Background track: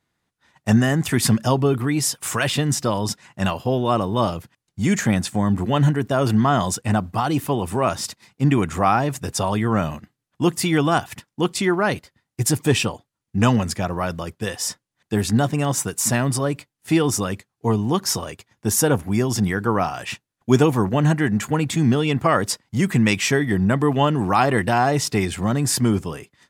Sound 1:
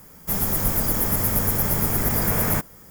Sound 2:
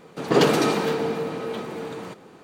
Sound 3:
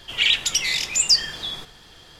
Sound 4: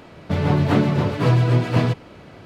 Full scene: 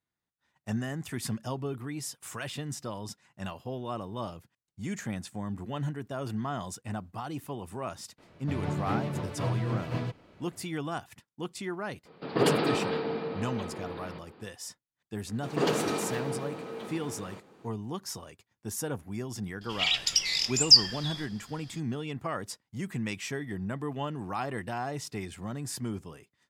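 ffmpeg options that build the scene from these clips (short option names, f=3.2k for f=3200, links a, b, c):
-filter_complex "[2:a]asplit=2[a][b];[0:a]volume=-16dB[c];[a]aresample=11025,aresample=44100[d];[3:a]equalizer=f=5k:t=o:w=0.3:g=12.5[e];[4:a]atrim=end=2.45,asetpts=PTS-STARTPTS,volume=-14dB,afade=t=in:d=0.004:c=hsin,afade=t=out:st=2.446:d=0.004:c=hsin,adelay=360738S[f];[d]atrim=end=2.43,asetpts=PTS-STARTPTS,volume=-7dB,afade=t=in:d=0.004:c=hsin,afade=t=out:st=2.426:d=0.004:c=hsin,adelay=12050[g];[b]atrim=end=2.43,asetpts=PTS-STARTPTS,volume=-9.5dB,afade=t=in:d=0.004:c=hsin,afade=t=out:st=2.426:d=0.004:c=hsin,adelay=15260[h];[e]atrim=end=2.19,asetpts=PTS-STARTPTS,volume=-9.5dB,afade=t=in:d=0.004:c=hsin,afade=t=out:st=2.186:d=0.004:c=hsin,adelay=19610[i];[c][f][g][h][i]amix=inputs=5:normalize=0"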